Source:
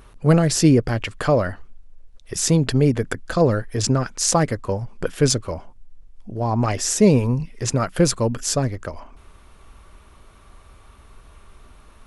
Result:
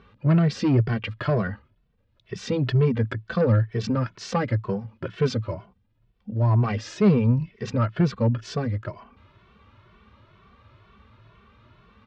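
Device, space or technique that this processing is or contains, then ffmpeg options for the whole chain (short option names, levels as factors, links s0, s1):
barber-pole flanger into a guitar amplifier: -filter_complex "[0:a]asettb=1/sr,asplit=3[s0][s1][s2];[s0]atrim=end=7.794[s3];[s1]atrim=start=7.79:end=8.42,asetpts=PTS-STARTPTS,afade=t=in:d=0.004:c=qsin,afade=t=out:st=0.626:d=0.004:c=qsin,highshelf=f=4600:g=-8[s4];[s2]atrim=start=8.416[s5];[s3][s4]acrossfade=d=0.004:c1=hsin:c2=qsin[s6];[s6][s5]acrossfade=d=0.004:c1=qsin:c2=hsin,asplit=2[s7][s8];[s8]adelay=2.2,afreqshift=2.1[s9];[s7][s9]amix=inputs=2:normalize=1,asoftclip=type=tanh:threshold=0.2,highpass=86,equalizer=f=110:t=q:w=4:g=10,equalizer=f=210:t=q:w=4:g=6,equalizer=f=290:t=q:w=4:g=-4,equalizer=f=750:t=q:w=4:g=-6,lowpass=f=4000:w=0.5412,lowpass=f=4000:w=1.3066"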